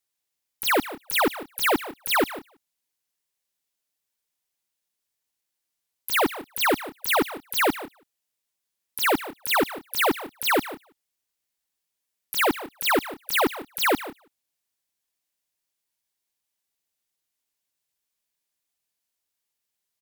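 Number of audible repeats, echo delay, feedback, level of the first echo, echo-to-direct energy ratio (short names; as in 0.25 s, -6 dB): 1, 0.15 s, no steady repeat, -15.5 dB, -15.0 dB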